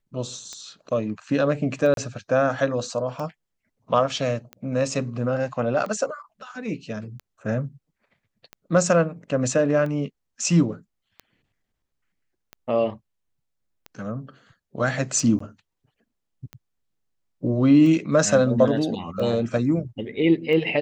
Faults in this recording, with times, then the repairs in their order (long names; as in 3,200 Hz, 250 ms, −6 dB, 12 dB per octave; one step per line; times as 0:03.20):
scratch tick 45 rpm −22 dBFS
0:01.94–0:01.97: drop-out 32 ms
0:15.39–0:15.40: drop-out 14 ms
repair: click removal
repair the gap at 0:01.94, 32 ms
repair the gap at 0:15.39, 14 ms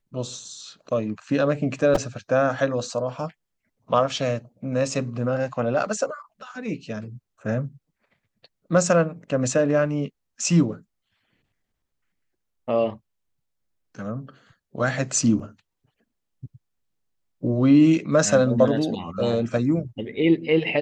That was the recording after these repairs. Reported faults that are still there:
none of them is left